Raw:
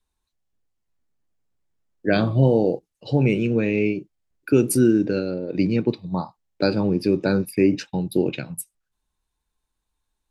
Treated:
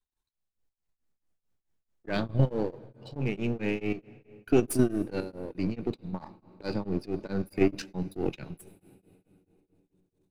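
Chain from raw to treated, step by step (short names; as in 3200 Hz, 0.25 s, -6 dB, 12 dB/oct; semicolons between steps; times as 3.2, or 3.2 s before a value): half-wave gain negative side -7 dB; level quantiser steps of 9 dB; on a send at -21 dB: reverb RT60 3.8 s, pre-delay 77 ms; on the sum: beating tremolo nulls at 4.6 Hz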